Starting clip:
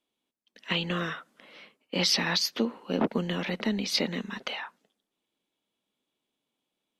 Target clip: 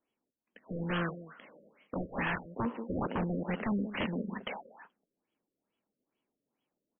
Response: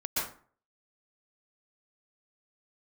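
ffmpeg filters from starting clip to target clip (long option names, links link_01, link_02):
-af "aecho=1:1:185:0.2,aresample=11025,aeval=exprs='0.0531*(abs(mod(val(0)/0.0531+3,4)-2)-1)':channel_layout=same,aresample=44100,afftfilt=real='re*lt(b*sr/1024,600*pow(3400/600,0.5+0.5*sin(2*PI*2.3*pts/sr)))':imag='im*lt(b*sr/1024,600*pow(3400/600,0.5+0.5*sin(2*PI*2.3*pts/sr)))':win_size=1024:overlap=0.75"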